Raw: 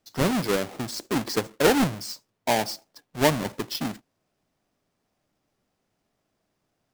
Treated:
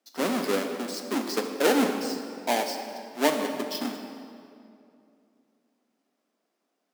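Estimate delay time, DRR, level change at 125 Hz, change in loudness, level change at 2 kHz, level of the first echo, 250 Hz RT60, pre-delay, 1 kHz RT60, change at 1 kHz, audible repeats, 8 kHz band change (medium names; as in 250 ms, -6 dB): no echo, 4.5 dB, -15.0 dB, -2.0 dB, -2.0 dB, no echo, 2.9 s, 3 ms, 2.4 s, -1.5 dB, no echo, -2.5 dB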